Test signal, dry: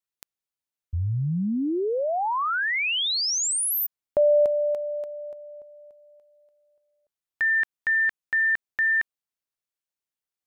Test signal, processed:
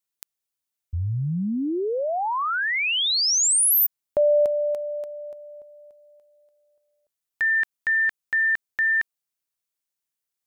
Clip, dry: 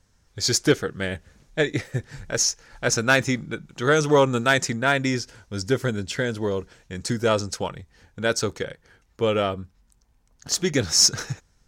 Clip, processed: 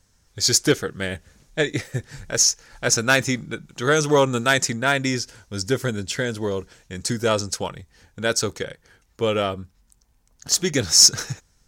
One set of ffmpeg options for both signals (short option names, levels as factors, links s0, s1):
-af "highshelf=f=4800:g=7.5"